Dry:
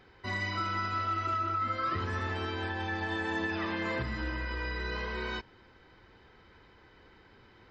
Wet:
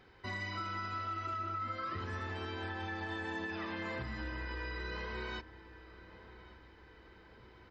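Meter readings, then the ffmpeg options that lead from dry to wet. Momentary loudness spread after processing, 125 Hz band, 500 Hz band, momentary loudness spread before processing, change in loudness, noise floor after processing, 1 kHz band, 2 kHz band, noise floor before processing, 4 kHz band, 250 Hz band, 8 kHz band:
20 LU, −6.0 dB, −6.0 dB, 5 LU, −6.5 dB, −59 dBFS, −7.0 dB, −6.0 dB, −59 dBFS, −6.0 dB, −6.5 dB, can't be measured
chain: -filter_complex "[0:a]acompressor=threshold=-37dB:ratio=2,asplit=2[link_01][link_02];[link_02]adelay=1138,lowpass=frequency=2100:poles=1,volume=-15.5dB,asplit=2[link_03][link_04];[link_04]adelay=1138,lowpass=frequency=2100:poles=1,volume=0.55,asplit=2[link_05][link_06];[link_06]adelay=1138,lowpass=frequency=2100:poles=1,volume=0.55,asplit=2[link_07][link_08];[link_08]adelay=1138,lowpass=frequency=2100:poles=1,volume=0.55,asplit=2[link_09][link_10];[link_10]adelay=1138,lowpass=frequency=2100:poles=1,volume=0.55[link_11];[link_01][link_03][link_05][link_07][link_09][link_11]amix=inputs=6:normalize=0,volume=-2.5dB"

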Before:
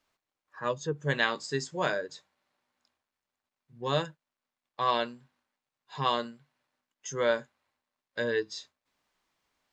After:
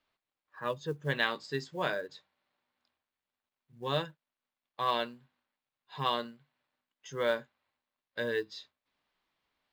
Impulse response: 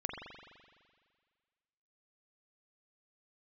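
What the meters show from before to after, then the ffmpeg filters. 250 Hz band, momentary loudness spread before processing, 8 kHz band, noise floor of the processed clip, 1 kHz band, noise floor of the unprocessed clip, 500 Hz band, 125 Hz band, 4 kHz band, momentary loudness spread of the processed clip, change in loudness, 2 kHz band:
−3.5 dB, 15 LU, below −10 dB, below −85 dBFS, −3.0 dB, below −85 dBFS, −3.5 dB, −3.5 dB, −2.0 dB, 15 LU, −3.0 dB, −3.0 dB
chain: -af "highshelf=frequency=5100:width_type=q:width=1.5:gain=-8.5,acrusher=bits=8:mode=log:mix=0:aa=0.000001,volume=-3.5dB"

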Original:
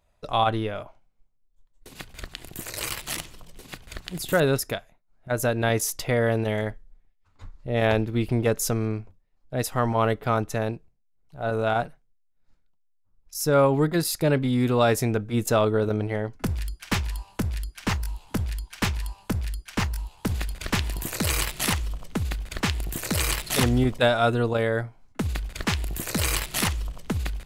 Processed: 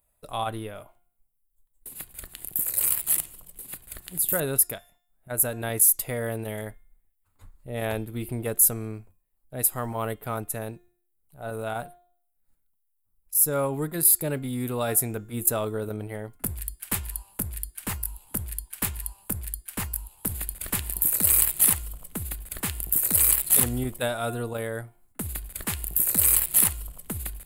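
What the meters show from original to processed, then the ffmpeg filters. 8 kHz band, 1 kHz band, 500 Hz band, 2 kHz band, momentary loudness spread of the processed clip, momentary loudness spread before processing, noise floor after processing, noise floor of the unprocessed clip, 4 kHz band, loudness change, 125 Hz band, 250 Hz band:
+8.5 dB, −7.5 dB, −7.5 dB, −7.5 dB, 19 LU, 12 LU, −73 dBFS, −66 dBFS, −8.0 dB, +1.5 dB, −7.5 dB, −7.5 dB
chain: -af "highshelf=frequency=12000:gain=-4.5,bandreject=frequency=353.3:width_type=h:width=4,bandreject=frequency=706.6:width_type=h:width=4,bandreject=frequency=1059.9:width_type=h:width=4,bandreject=frequency=1413.2:width_type=h:width=4,bandreject=frequency=1766.5:width_type=h:width=4,bandreject=frequency=2119.8:width_type=h:width=4,bandreject=frequency=2473.1:width_type=h:width=4,bandreject=frequency=2826.4:width_type=h:width=4,bandreject=frequency=3179.7:width_type=h:width=4,bandreject=frequency=3533:width_type=h:width=4,bandreject=frequency=3886.3:width_type=h:width=4,bandreject=frequency=4239.6:width_type=h:width=4,bandreject=frequency=4592.9:width_type=h:width=4,bandreject=frequency=4946.2:width_type=h:width=4,bandreject=frequency=5299.5:width_type=h:width=4,bandreject=frequency=5652.8:width_type=h:width=4,bandreject=frequency=6006.1:width_type=h:width=4,bandreject=frequency=6359.4:width_type=h:width=4,bandreject=frequency=6712.7:width_type=h:width=4,bandreject=frequency=7066:width_type=h:width=4,bandreject=frequency=7419.3:width_type=h:width=4,bandreject=frequency=7772.6:width_type=h:width=4,aexciter=amount=10.2:drive=8.3:freq=8500,volume=-7.5dB"

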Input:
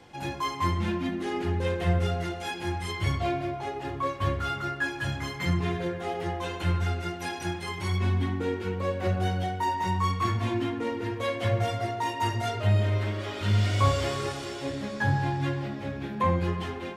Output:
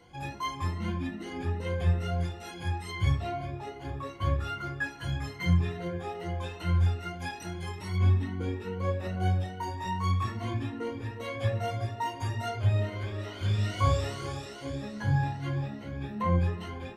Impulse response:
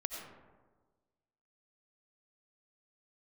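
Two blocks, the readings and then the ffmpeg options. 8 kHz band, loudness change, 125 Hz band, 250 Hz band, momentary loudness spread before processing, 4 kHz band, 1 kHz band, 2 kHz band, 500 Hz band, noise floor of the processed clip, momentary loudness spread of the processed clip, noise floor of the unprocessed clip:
−5.5 dB, −2.5 dB, −0.5 dB, −4.0 dB, 7 LU, −5.5 dB, −5.5 dB, −5.5 dB, −5.5 dB, −43 dBFS, 10 LU, −37 dBFS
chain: -af "afftfilt=real='re*pow(10,14/40*sin(2*PI*(1.9*log(max(b,1)*sr/1024/100)/log(2)-(2.4)*(pts-256)/sr)))':imag='im*pow(10,14/40*sin(2*PI*(1.9*log(max(b,1)*sr/1024/100)/log(2)-(2.4)*(pts-256)/sr)))':win_size=1024:overlap=0.75,lowshelf=frequency=140:gain=10,bandreject=frequency=50:width_type=h:width=6,bandreject=frequency=100:width_type=h:width=6,bandreject=frequency=150:width_type=h:width=6,bandreject=frequency=200:width_type=h:width=6,bandreject=frequency=250:width_type=h:width=6,bandreject=frequency=300:width_type=h:width=6,bandreject=frequency=350:width_type=h:width=6,volume=-8dB"

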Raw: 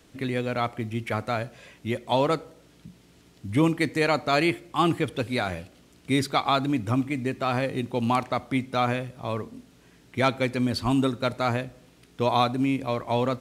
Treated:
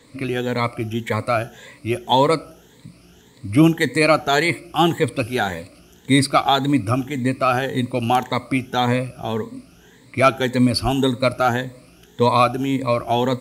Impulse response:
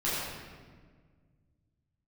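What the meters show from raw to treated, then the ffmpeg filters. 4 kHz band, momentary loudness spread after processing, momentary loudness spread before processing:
+7.5 dB, 10 LU, 9 LU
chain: -af "afftfilt=real='re*pow(10,13/40*sin(2*PI*(1*log(max(b,1)*sr/1024/100)/log(2)-(1.8)*(pts-256)/sr)))':imag='im*pow(10,13/40*sin(2*PI*(1*log(max(b,1)*sr/1024/100)/log(2)-(1.8)*(pts-256)/sr)))':win_size=1024:overlap=0.75,adynamicequalizer=threshold=0.00501:dfrequency=8000:dqfactor=0.7:tfrequency=8000:tqfactor=0.7:attack=5:release=100:ratio=0.375:range=3:mode=boostabove:tftype=highshelf,volume=4.5dB"

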